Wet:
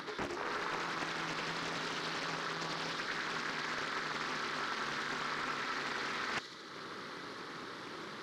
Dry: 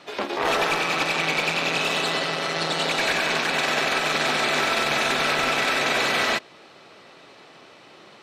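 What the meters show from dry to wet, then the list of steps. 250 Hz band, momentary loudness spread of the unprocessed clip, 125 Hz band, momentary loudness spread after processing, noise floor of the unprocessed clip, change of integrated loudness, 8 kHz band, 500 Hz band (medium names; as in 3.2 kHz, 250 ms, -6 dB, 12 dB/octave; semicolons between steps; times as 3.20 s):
-12.5 dB, 3 LU, -13.0 dB, 8 LU, -49 dBFS, -16.0 dB, -16.5 dB, -17.0 dB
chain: static phaser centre 2.6 kHz, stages 6; in parallel at -7 dB: companded quantiser 4-bit; on the sum: upward compressor, threshold -35 dBFS; steep low-pass 11 kHz; bass shelf 160 Hz -9 dB; reverse; compression 16:1, threshold -32 dBFS, peak gain reduction 14 dB; reverse; treble shelf 3.2 kHz -11 dB; feedback echo behind a high-pass 75 ms, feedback 77%, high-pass 4.9 kHz, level -3 dB; loudspeaker Doppler distortion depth 0.86 ms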